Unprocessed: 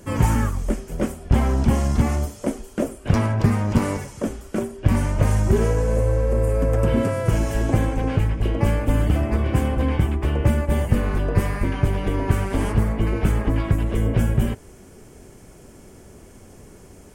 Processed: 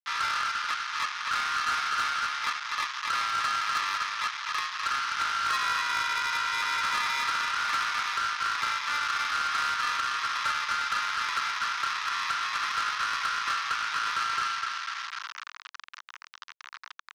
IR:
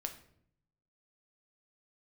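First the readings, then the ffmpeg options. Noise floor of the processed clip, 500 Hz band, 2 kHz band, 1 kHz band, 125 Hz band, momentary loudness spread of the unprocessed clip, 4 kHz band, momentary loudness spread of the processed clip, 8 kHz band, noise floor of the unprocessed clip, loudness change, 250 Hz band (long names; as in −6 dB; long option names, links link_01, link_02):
−55 dBFS, −28.0 dB, +6.5 dB, +4.5 dB, below −35 dB, 7 LU, +10.5 dB, 10 LU, −0.5 dB, −46 dBFS, −6.0 dB, −34.0 dB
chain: -filter_complex "[0:a]asplit=2[link_01][link_02];[link_02]acompressor=threshold=-35dB:ratio=4,volume=-2.5dB[link_03];[link_01][link_03]amix=inputs=2:normalize=0,asplit=2[link_04][link_05];[link_05]adelay=250,lowpass=frequency=1400:poles=1,volume=-5dB,asplit=2[link_06][link_07];[link_07]adelay=250,lowpass=frequency=1400:poles=1,volume=0.53,asplit=2[link_08][link_09];[link_09]adelay=250,lowpass=frequency=1400:poles=1,volume=0.53,asplit=2[link_10][link_11];[link_11]adelay=250,lowpass=frequency=1400:poles=1,volume=0.53,asplit=2[link_12][link_13];[link_13]adelay=250,lowpass=frequency=1400:poles=1,volume=0.53,asplit=2[link_14][link_15];[link_15]adelay=250,lowpass=frequency=1400:poles=1,volume=0.53,asplit=2[link_16][link_17];[link_17]adelay=250,lowpass=frequency=1400:poles=1,volume=0.53[link_18];[link_04][link_06][link_08][link_10][link_12][link_14][link_16][link_18]amix=inputs=8:normalize=0,acrusher=samples=30:mix=1:aa=0.000001,equalizer=frequency=1400:width=4.3:gain=13,acrusher=bits=4:mix=0:aa=0.000001,asuperpass=centerf=2600:order=12:qfactor=0.51,asoftclip=type=tanh:threshold=-22.5dB"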